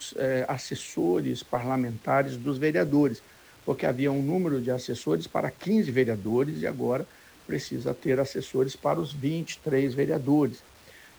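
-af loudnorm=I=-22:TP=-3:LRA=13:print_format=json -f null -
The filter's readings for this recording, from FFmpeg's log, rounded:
"input_i" : "-27.6",
"input_tp" : "-12.2",
"input_lra" : "1.4",
"input_thresh" : "-38.0",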